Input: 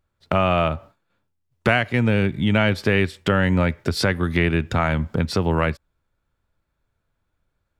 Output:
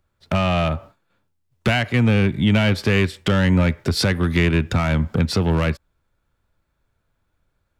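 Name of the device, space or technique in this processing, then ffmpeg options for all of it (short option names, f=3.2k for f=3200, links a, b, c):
one-band saturation: -filter_complex "[0:a]acrossover=split=250|2300[a][b][c];[b]asoftclip=type=tanh:threshold=-23dB[d];[a][d][c]amix=inputs=3:normalize=0,volume=3.5dB"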